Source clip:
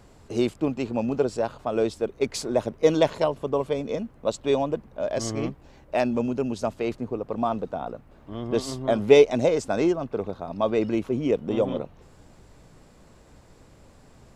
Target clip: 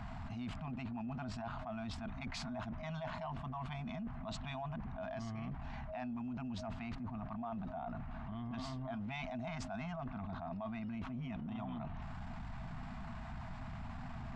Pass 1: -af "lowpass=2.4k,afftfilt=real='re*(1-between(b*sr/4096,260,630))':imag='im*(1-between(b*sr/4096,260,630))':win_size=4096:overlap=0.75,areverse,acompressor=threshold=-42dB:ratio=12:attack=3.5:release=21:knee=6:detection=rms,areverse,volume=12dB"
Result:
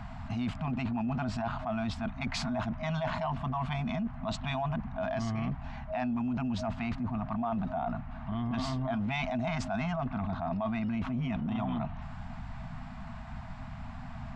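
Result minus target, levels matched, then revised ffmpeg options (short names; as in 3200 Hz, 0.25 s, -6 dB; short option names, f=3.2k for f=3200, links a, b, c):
compressor: peak gain reduction -10 dB
-af "lowpass=2.4k,afftfilt=real='re*(1-between(b*sr/4096,260,630))':imag='im*(1-between(b*sr/4096,260,630))':win_size=4096:overlap=0.75,areverse,acompressor=threshold=-53dB:ratio=12:attack=3.5:release=21:knee=6:detection=rms,areverse,volume=12dB"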